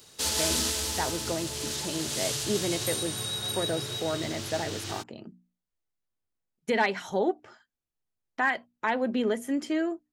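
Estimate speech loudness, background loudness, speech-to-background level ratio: −31.5 LKFS, −30.0 LKFS, −1.5 dB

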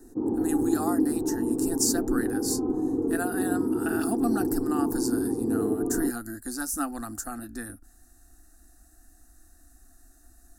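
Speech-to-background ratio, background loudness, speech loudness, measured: −3.5 dB, −28.0 LKFS, −31.5 LKFS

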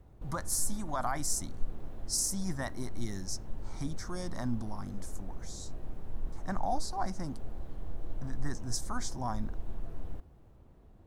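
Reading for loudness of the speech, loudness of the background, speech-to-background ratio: −37.0 LKFS, −47.0 LKFS, 10.0 dB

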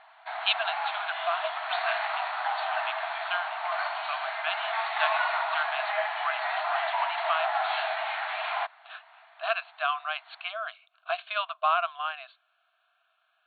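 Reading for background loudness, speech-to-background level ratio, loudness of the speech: −30.5 LKFS, −2.5 dB, −33.0 LKFS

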